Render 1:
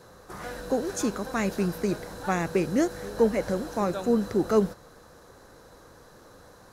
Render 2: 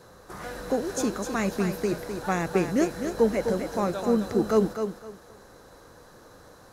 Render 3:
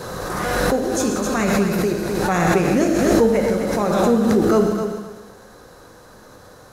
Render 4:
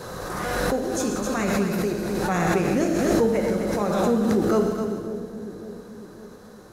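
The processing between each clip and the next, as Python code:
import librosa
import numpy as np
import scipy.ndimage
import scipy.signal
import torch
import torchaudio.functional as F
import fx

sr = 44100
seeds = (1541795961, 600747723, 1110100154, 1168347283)

y1 = fx.echo_thinned(x, sr, ms=256, feedback_pct=24, hz=160.0, wet_db=-7)
y2 = fx.rev_gated(y1, sr, seeds[0], gate_ms=200, shape='flat', drr_db=2.5)
y2 = fx.pre_swell(y2, sr, db_per_s=22.0)
y2 = y2 * 10.0 ** (4.0 / 20.0)
y3 = fx.echo_wet_lowpass(y2, sr, ms=552, feedback_pct=50, hz=470.0, wet_db=-10.0)
y3 = y3 * 10.0 ** (-5.0 / 20.0)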